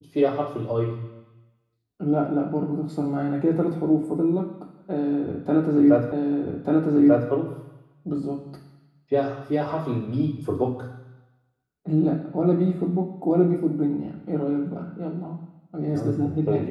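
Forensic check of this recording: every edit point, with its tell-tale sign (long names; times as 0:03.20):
0:06.12: the same again, the last 1.19 s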